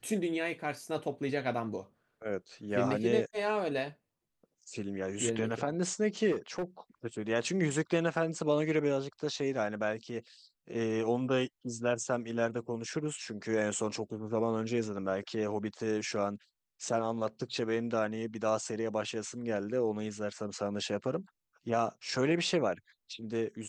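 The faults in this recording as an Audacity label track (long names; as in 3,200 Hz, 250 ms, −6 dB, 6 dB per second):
6.310000	6.640000	clipping −29 dBFS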